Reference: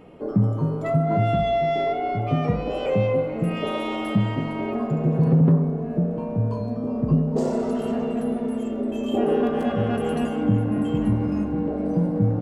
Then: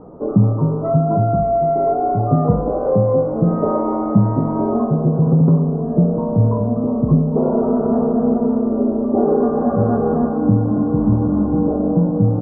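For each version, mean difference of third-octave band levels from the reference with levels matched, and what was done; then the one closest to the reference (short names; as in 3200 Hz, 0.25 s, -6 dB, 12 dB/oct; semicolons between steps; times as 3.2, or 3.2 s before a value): 5.0 dB: steep low-pass 1300 Hz 48 dB/oct; vocal rider within 3 dB 0.5 s; gain +6.5 dB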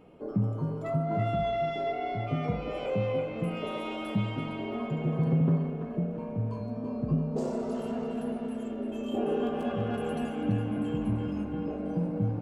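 1.5 dB: notch 1900 Hz, Q 15; narrowing echo 0.335 s, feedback 56%, band-pass 2100 Hz, level -3 dB; gain -8 dB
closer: second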